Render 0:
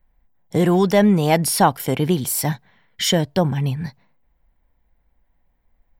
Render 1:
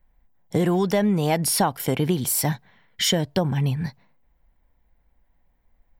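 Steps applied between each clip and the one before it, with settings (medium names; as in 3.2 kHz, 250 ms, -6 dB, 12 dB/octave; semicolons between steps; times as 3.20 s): compression 6:1, threshold -17 dBFS, peak gain reduction 8 dB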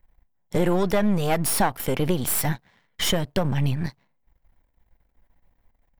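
partial rectifier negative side -12 dB; dynamic bell 5.2 kHz, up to -5 dB, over -44 dBFS, Q 1.1; trim +3.5 dB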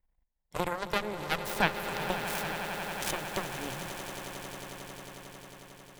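Chebyshev shaper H 3 -8 dB, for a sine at -8 dBFS; echo with a slow build-up 90 ms, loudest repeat 8, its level -13 dB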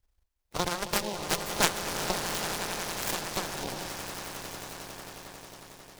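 coarse spectral quantiser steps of 30 dB; delay time shaken by noise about 3.7 kHz, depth 0.11 ms; trim +2.5 dB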